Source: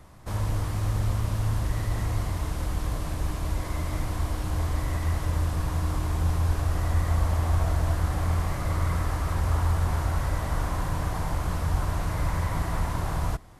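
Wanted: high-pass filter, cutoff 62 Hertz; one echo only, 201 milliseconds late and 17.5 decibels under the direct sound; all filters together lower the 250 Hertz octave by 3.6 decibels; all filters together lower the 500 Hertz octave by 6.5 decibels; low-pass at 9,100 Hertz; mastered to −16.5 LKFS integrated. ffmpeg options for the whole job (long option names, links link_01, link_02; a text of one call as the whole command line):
ffmpeg -i in.wav -af "highpass=62,lowpass=9100,equalizer=frequency=250:width_type=o:gain=-3.5,equalizer=frequency=500:width_type=o:gain=-8,aecho=1:1:201:0.133,volume=14dB" out.wav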